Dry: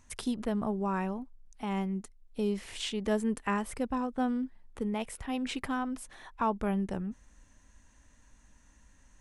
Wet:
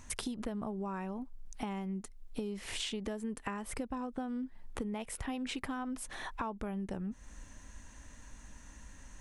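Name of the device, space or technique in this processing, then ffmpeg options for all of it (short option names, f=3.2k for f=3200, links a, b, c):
serial compression, leveller first: -af "acompressor=threshold=-33dB:ratio=2.5,acompressor=threshold=-45dB:ratio=5,volume=8.5dB"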